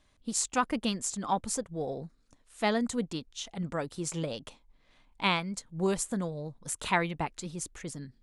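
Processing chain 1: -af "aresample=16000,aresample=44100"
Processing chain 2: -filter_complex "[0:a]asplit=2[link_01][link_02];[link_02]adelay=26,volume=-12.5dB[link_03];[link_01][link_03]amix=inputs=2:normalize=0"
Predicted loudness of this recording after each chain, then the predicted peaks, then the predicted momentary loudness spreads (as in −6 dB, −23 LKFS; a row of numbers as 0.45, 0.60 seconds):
−33.0, −32.5 LKFS; −11.5, −11.5 dBFS; 12, 11 LU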